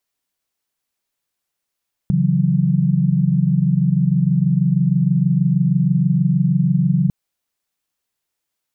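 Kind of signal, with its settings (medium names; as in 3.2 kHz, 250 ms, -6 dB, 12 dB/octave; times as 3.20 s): chord C#3/E3/F#3 sine, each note -17.5 dBFS 5.00 s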